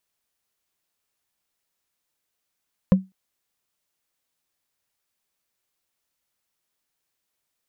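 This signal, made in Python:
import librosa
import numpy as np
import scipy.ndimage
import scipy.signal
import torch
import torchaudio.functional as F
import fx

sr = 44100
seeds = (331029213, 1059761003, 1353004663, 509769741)

y = fx.strike_wood(sr, length_s=0.2, level_db=-7.5, body='bar', hz=189.0, decay_s=0.21, tilt_db=8.0, modes=5)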